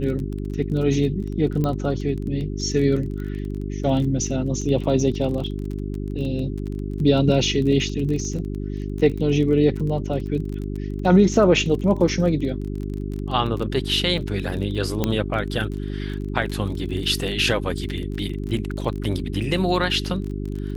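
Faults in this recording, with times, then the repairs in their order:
crackle 26 per s -29 dBFS
hum 50 Hz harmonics 8 -28 dBFS
1.64 s: pop -13 dBFS
15.04 s: pop -7 dBFS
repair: de-click; de-hum 50 Hz, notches 8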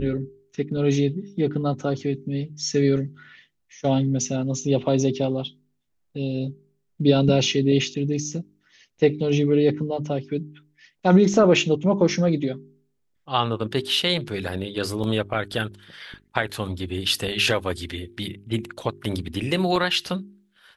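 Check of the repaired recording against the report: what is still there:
15.04 s: pop

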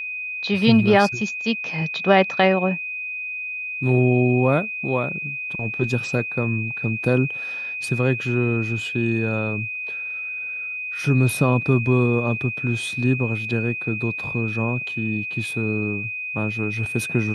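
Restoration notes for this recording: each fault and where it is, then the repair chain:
whine 2.5 kHz -27 dBFS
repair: band-stop 2.5 kHz, Q 30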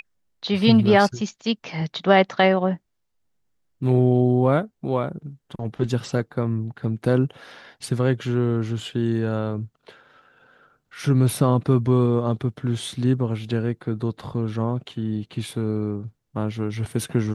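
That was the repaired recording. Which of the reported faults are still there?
nothing left

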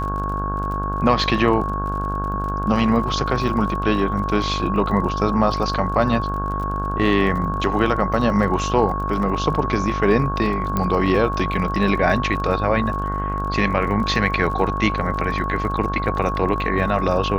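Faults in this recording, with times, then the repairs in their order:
buzz 50 Hz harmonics 33 -26 dBFS
crackle 36 per s -30 dBFS
whine 1.1 kHz -25 dBFS
10.77 s: pop -8 dBFS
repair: de-click; de-hum 50 Hz, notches 33; band-stop 1.1 kHz, Q 30

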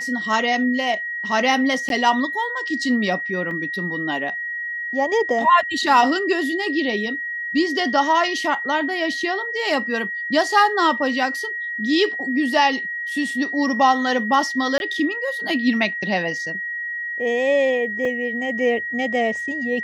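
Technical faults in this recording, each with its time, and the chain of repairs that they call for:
whine 1.9 kHz -25 dBFS
1.89–1.90 s: dropout 12 ms
3.51 s: dropout 2.5 ms
14.78–14.80 s: dropout 21 ms
18.05 s: dropout 2.3 ms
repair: band-stop 1.9 kHz, Q 30; interpolate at 1.89 s, 12 ms; interpolate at 3.51 s, 2.5 ms; interpolate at 14.78 s, 21 ms; interpolate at 18.05 s, 2.3 ms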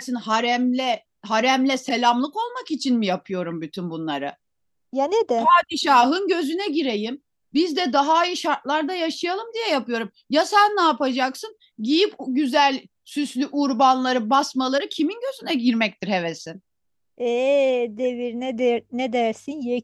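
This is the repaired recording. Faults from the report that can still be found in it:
nothing left

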